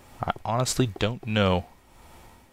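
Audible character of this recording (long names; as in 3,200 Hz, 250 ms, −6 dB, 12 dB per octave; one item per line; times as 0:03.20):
tremolo triangle 1.5 Hz, depth 65%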